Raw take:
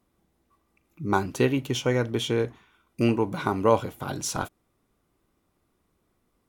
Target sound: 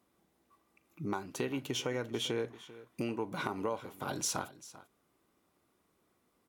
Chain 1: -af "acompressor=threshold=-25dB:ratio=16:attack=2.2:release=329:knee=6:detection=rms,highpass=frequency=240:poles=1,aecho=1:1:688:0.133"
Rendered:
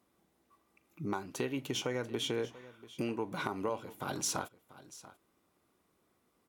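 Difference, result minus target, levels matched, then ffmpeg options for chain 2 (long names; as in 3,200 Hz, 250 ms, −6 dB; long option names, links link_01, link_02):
echo 295 ms late
-af "acompressor=threshold=-25dB:ratio=16:attack=2.2:release=329:knee=6:detection=rms,highpass=frequency=240:poles=1,aecho=1:1:393:0.133"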